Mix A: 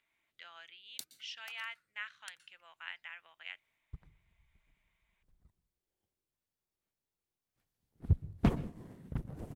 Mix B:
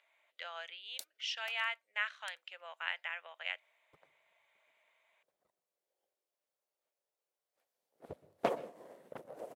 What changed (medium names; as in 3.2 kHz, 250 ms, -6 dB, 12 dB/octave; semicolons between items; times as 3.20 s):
speech +6.0 dB; first sound: send off; master: add resonant high-pass 560 Hz, resonance Q 3.5